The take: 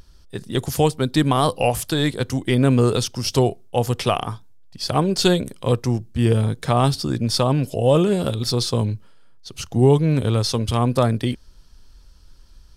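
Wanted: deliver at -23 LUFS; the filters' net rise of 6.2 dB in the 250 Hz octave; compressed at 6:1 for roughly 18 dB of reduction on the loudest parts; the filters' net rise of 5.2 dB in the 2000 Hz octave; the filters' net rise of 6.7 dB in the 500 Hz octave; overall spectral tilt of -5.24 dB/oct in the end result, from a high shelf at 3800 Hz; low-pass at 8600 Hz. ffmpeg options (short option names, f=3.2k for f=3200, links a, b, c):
-af "lowpass=8.6k,equalizer=f=250:t=o:g=6,equalizer=f=500:t=o:g=6,equalizer=f=2k:t=o:g=5,highshelf=f=3.8k:g=5,acompressor=threshold=-26dB:ratio=6,volume=7dB"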